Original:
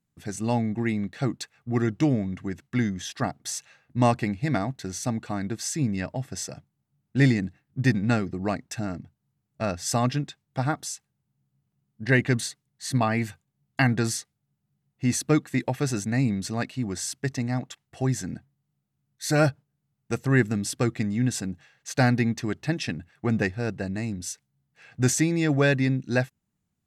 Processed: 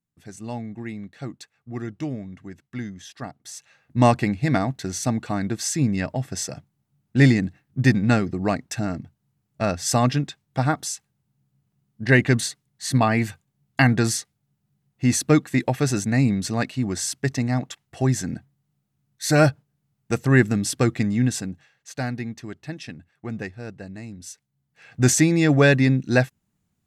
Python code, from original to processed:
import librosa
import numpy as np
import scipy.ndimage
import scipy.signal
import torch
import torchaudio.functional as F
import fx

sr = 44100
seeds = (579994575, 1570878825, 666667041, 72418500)

y = fx.gain(x, sr, db=fx.line((3.5, -7.0), (3.99, 4.5), (21.18, 4.5), (22.03, -7.0), (24.12, -7.0), (25.12, 5.5)))